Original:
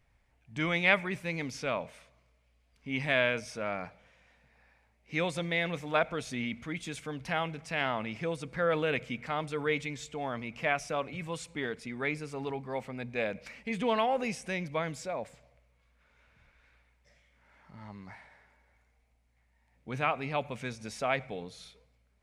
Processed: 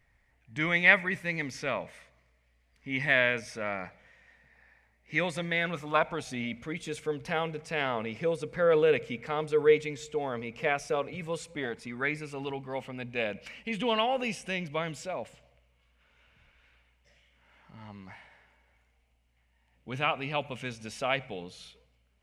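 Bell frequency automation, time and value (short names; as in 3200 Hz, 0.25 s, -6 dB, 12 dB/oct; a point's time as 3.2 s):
bell +11 dB 0.26 oct
5.39 s 1900 Hz
6.76 s 460 Hz
11.47 s 460 Hz
12.35 s 2900 Hz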